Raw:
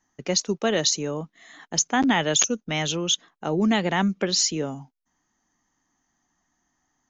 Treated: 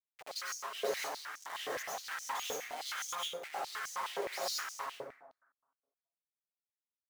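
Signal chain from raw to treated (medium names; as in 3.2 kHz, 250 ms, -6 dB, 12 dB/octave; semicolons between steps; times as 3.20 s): comb filter that takes the minimum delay 7.4 ms; compression 12:1, threshold -35 dBFS, peak gain reduction 18 dB; Schmitt trigger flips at -46.5 dBFS; plate-style reverb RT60 1.1 s, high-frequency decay 0.45×, pre-delay 85 ms, DRR -7 dB; step-sequenced high-pass 9.6 Hz 490–6100 Hz; trim -4.5 dB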